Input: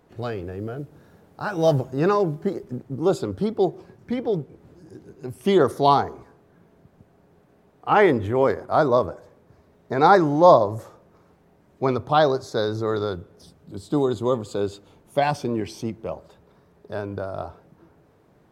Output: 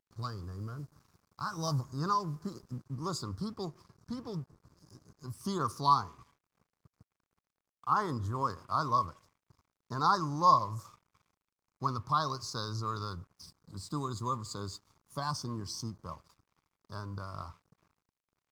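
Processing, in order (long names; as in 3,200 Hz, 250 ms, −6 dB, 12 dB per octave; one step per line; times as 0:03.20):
drawn EQ curve 120 Hz 0 dB, 190 Hz −5 dB, 280 Hz −9 dB, 400 Hz −16 dB, 750 Hz −16 dB, 1,100 Hz +8 dB, 2,400 Hz −28 dB, 4,800 Hz +9 dB, 11,000 Hz +1 dB
in parallel at −2 dB: downward compressor, threshold −32 dBFS, peak gain reduction 20 dB
on the sum: pitch vibrato 0.87 Hz 7.9 cents
dead-zone distortion −50.5 dBFS
level −8.5 dB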